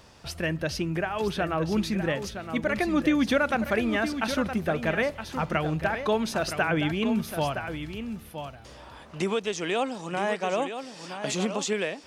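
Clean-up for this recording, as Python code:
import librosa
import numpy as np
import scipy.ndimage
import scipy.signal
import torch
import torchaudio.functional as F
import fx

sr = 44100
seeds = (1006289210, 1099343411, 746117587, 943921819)

y = fx.fix_declick_ar(x, sr, threshold=6.5)
y = fx.fix_echo_inverse(y, sr, delay_ms=967, level_db=-9.0)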